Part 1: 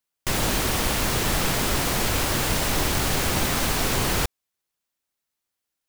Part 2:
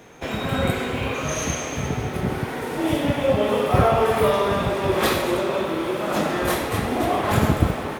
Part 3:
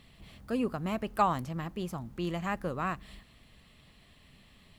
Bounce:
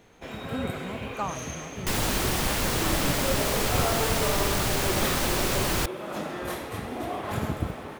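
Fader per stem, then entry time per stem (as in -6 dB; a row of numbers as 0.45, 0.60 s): -3.0, -10.5, -5.5 dB; 1.60, 0.00, 0.00 s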